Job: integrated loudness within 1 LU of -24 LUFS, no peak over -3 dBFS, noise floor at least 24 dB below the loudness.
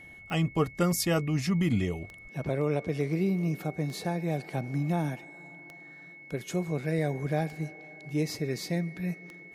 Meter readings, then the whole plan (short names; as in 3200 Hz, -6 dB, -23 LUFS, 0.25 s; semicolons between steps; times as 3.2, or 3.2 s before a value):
clicks 6; steady tone 2200 Hz; tone level -47 dBFS; loudness -30.5 LUFS; peak -13.0 dBFS; loudness target -24.0 LUFS
-> de-click; notch 2200 Hz, Q 30; gain +6.5 dB